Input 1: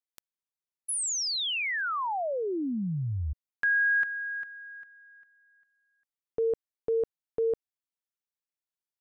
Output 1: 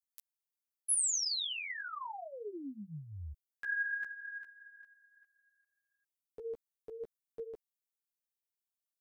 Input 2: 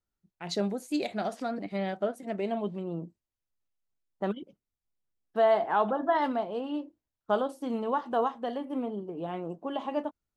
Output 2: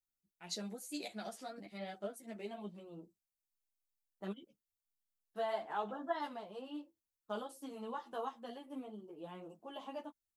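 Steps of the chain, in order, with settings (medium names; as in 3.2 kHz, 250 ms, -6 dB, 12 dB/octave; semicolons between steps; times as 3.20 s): pre-emphasis filter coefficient 0.8; three-phase chorus; trim +2.5 dB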